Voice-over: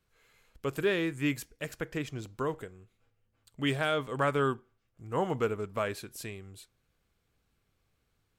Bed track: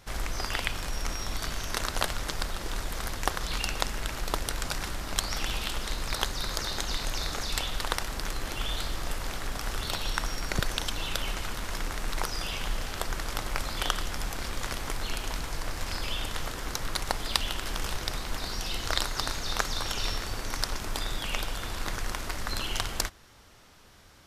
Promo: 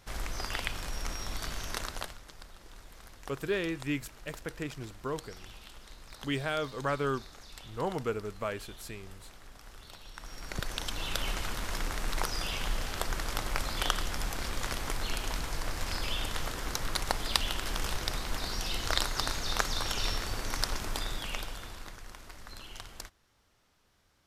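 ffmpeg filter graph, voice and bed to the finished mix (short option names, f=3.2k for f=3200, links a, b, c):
-filter_complex "[0:a]adelay=2650,volume=-3dB[a];[1:a]volume=13dB,afade=t=out:st=1.7:d=0.5:silence=0.199526,afade=t=in:st=10.14:d=1.14:silence=0.141254,afade=t=out:st=20.77:d=1.19:silence=0.211349[b];[a][b]amix=inputs=2:normalize=0"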